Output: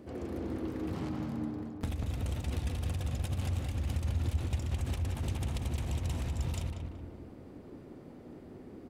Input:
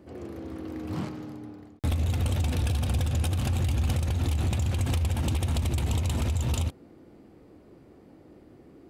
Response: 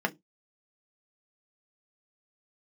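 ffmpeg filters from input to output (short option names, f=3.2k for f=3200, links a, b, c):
-filter_complex "[0:a]acompressor=threshold=-35dB:ratio=6,asplit=3[a][b][c];[b]asetrate=33038,aresample=44100,atempo=1.33484,volume=-5dB[d];[c]asetrate=58866,aresample=44100,atempo=0.749154,volume=-17dB[e];[a][d][e]amix=inputs=3:normalize=0,asplit=2[f][g];[g]adelay=188,lowpass=f=1.9k:p=1,volume=-3.5dB,asplit=2[h][i];[i]adelay=188,lowpass=f=1.9k:p=1,volume=0.52,asplit=2[j][k];[k]adelay=188,lowpass=f=1.9k:p=1,volume=0.52,asplit=2[l][m];[m]adelay=188,lowpass=f=1.9k:p=1,volume=0.52,asplit=2[n][o];[o]adelay=188,lowpass=f=1.9k:p=1,volume=0.52,asplit=2[p][q];[q]adelay=188,lowpass=f=1.9k:p=1,volume=0.52,asplit=2[r][s];[s]adelay=188,lowpass=f=1.9k:p=1,volume=0.52[t];[f][h][j][l][n][p][r][t]amix=inputs=8:normalize=0"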